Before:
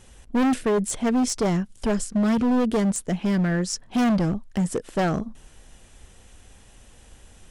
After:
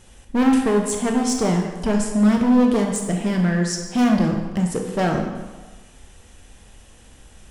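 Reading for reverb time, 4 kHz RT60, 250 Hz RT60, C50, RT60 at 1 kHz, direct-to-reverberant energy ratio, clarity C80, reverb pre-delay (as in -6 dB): 1.2 s, 1.0 s, 1.2 s, 4.5 dB, 1.3 s, 2.0 dB, 6.5 dB, 18 ms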